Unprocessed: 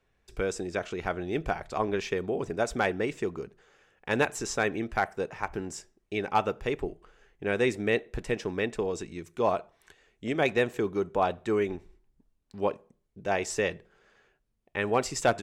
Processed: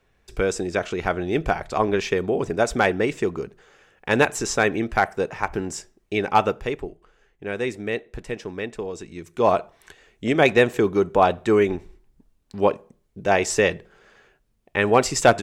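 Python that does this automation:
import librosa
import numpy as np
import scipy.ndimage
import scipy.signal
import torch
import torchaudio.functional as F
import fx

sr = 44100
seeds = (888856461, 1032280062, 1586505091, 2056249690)

y = fx.gain(x, sr, db=fx.line((6.47, 7.5), (6.9, -0.5), (8.98, -0.5), (9.56, 9.0)))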